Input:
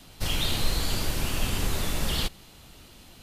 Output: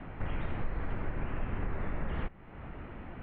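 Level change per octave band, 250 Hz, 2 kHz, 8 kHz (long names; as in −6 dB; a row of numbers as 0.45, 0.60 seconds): −5.5 dB, −9.0 dB, below −40 dB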